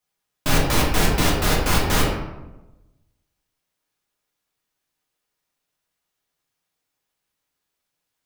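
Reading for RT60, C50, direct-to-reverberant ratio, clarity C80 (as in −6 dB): 1.0 s, 3.0 dB, −3.5 dB, 5.5 dB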